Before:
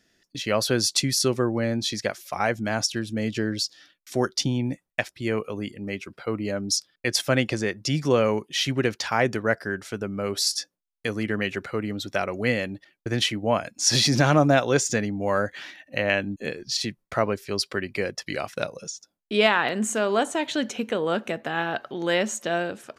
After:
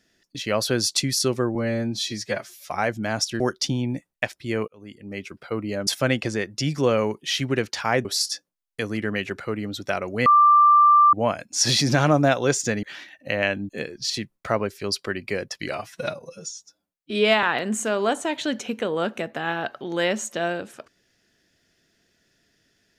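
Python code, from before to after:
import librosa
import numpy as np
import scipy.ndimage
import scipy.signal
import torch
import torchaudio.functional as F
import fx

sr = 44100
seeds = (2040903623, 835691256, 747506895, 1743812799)

y = fx.edit(x, sr, fx.stretch_span(start_s=1.55, length_s=0.76, factor=1.5),
    fx.cut(start_s=3.02, length_s=1.14),
    fx.fade_in_span(start_s=5.44, length_s=0.61),
    fx.cut(start_s=6.63, length_s=0.51),
    fx.cut(start_s=9.32, length_s=0.99),
    fx.bleep(start_s=12.52, length_s=0.87, hz=1180.0, db=-11.0),
    fx.cut(start_s=15.09, length_s=0.41),
    fx.stretch_span(start_s=18.39, length_s=1.14, factor=1.5), tone=tone)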